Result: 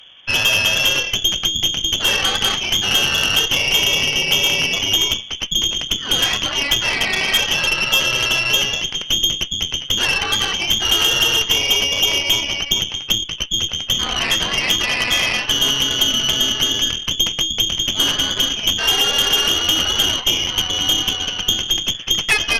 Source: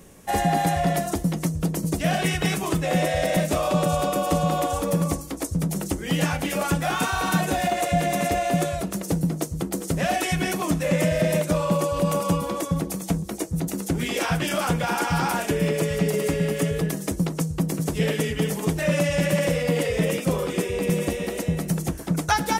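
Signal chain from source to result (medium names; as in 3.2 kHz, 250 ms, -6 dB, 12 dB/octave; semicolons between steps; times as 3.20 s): frequency inversion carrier 3.4 kHz; Chebyshev shaper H 4 -12 dB, 6 -10 dB, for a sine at -8.5 dBFS; trim +4.5 dB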